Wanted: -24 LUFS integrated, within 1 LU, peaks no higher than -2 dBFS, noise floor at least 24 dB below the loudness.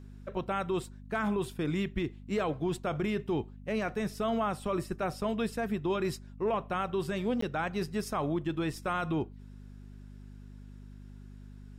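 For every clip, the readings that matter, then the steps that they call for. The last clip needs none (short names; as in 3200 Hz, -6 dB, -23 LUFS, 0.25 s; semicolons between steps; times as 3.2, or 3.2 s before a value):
dropouts 1; longest dropout 14 ms; hum 50 Hz; harmonics up to 250 Hz; hum level -45 dBFS; loudness -33.0 LUFS; peak -21.0 dBFS; loudness target -24.0 LUFS
-> interpolate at 7.41, 14 ms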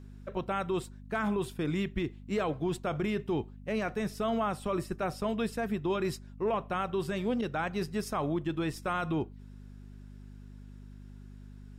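dropouts 0; hum 50 Hz; harmonics up to 250 Hz; hum level -45 dBFS
-> de-hum 50 Hz, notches 5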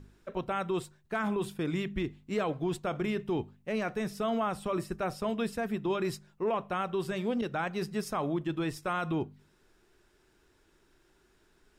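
hum none; loudness -33.5 LUFS; peak -21.0 dBFS; loudness target -24.0 LUFS
-> gain +9.5 dB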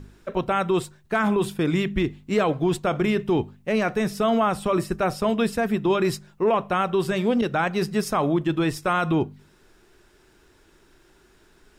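loudness -24.0 LUFS; peak -11.5 dBFS; noise floor -58 dBFS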